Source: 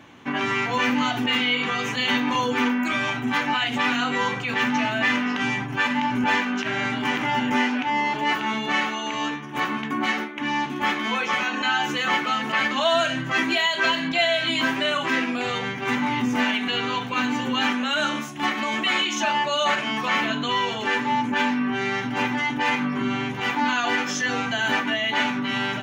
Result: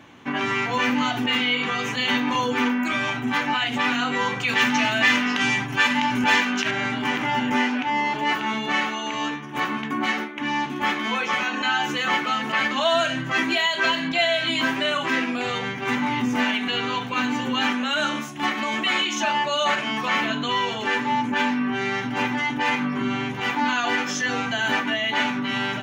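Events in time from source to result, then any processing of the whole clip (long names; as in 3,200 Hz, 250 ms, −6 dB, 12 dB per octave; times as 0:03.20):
0:04.40–0:06.71: high-shelf EQ 2,300 Hz +9 dB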